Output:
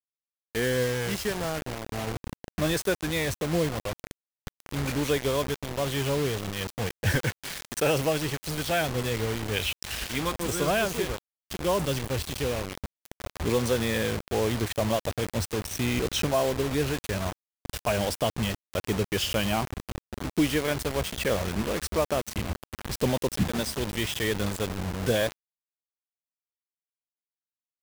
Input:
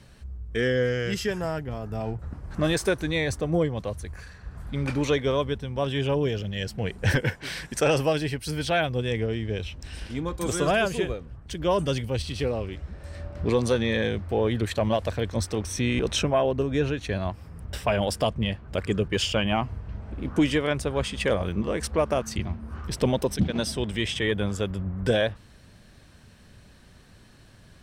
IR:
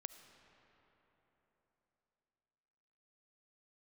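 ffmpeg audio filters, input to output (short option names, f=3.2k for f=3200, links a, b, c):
-filter_complex "[0:a]asettb=1/sr,asplit=3[a][b][c];[a]atrim=end=9.524[d];[b]atrim=start=9.52:end=10.32,asetpts=PTS-STARTPTS,afade=t=in:d=0.004:c=qsin,afade=t=out:st=0.796:d=0.004:c=qsin,equalizer=f=2.9k:w=0.36:g=13[e];[c]atrim=start=10.316[f];[d][e]acrossfade=d=0.004:c1=hsin:c2=qsin[g];[g][f]acrossfade=d=0.004:c1=qsin:c2=hsin,acrusher=bits=4:mix=0:aa=0.000001,volume=-2.5dB"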